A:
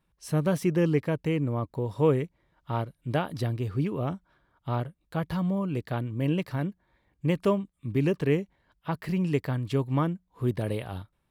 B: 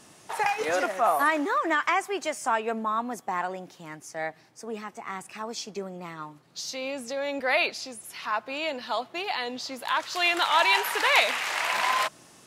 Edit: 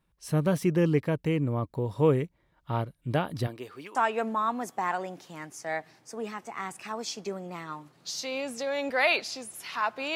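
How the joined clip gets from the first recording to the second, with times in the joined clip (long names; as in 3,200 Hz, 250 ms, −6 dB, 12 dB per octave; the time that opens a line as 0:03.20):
A
0:03.46–0:03.95: high-pass filter 290 Hz → 970 Hz
0:03.95: continue with B from 0:02.45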